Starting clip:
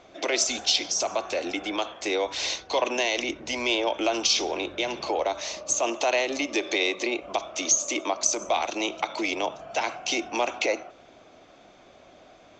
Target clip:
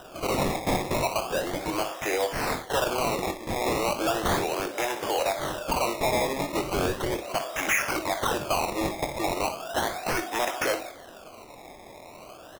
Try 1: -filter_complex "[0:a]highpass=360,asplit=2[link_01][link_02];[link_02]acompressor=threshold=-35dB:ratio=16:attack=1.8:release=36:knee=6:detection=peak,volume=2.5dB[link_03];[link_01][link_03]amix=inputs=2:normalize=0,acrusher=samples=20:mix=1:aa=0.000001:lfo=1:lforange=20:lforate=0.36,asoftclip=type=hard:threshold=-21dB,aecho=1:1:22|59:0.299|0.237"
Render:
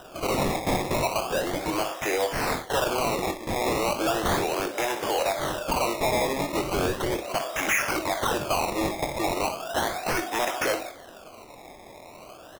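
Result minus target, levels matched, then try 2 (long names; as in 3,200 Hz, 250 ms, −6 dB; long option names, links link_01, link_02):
downward compressor: peak gain reduction −7.5 dB
-filter_complex "[0:a]highpass=360,asplit=2[link_01][link_02];[link_02]acompressor=threshold=-43dB:ratio=16:attack=1.8:release=36:knee=6:detection=peak,volume=2.5dB[link_03];[link_01][link_03]amix=inputs=2:normalize=0,acrusher=samples=20:mix=1:aa=0.000001:lfo=1:lforange=20:lforate=0.36,asoftclip=type=hard:threshold=-21dB,aecho=1:1:22|59:0.299|0.237"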